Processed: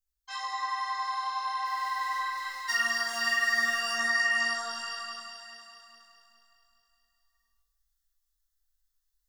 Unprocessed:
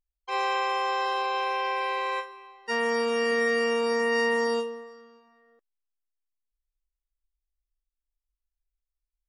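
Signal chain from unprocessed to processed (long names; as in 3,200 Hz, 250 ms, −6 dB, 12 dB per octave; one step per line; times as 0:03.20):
0:01.65–0:03.78: mu-law and A-law mismatch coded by A
high-shelf EQ 6,500 Hz +7.5 dB
phaser with its sweep stopped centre 980 Hz, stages 4
delay that swaps between a low-pass and a high-pass 104 ms, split 860 Hz, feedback 80%, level −4.5 dB
convolution reverb RT60 0.40 s, pre-delay 62 ms, DRR −1 dB
downward compressor 4 to 1, threshold −34 dBFS, peak gain reduction 12 dB
octave-band graphic EQ 125/250/500/1,000/2,000/4,000/8,000 Hz −7/−11/−10/−5/+9/+5/−4 dB
automatic gain control gain up to 6 dB
micro pitch shift up and down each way 18 cents
level +4 dB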